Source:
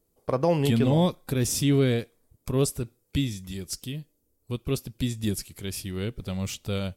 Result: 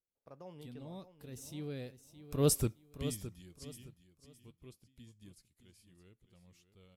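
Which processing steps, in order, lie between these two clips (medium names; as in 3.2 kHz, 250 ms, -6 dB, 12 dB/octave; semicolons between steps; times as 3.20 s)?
Doppler pass-by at 2.57 s, 21 m/s, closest 1.5 m; in parallel at -12 dB: hard clipper -26.5 dBFS, distortion -12 dB; on the sum: feedback delay 615 ms, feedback 27%, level -12 dB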